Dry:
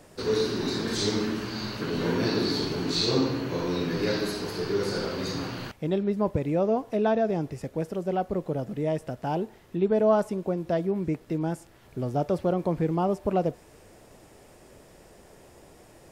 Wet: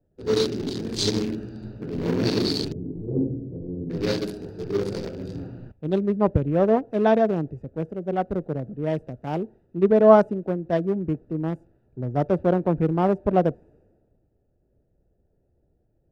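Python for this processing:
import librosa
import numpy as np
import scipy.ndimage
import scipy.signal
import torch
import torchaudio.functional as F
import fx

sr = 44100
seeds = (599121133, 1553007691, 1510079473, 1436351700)

y = fx.wiener(x, sr, points=41)
y = fx.gaussian_blur(y, sr, sigma=18.0, at=(2.72, 3.9))
y = fx.band_widen(y, sr, depth_pct=70)
y = y * 10.0 ** (4.0 / 20.0)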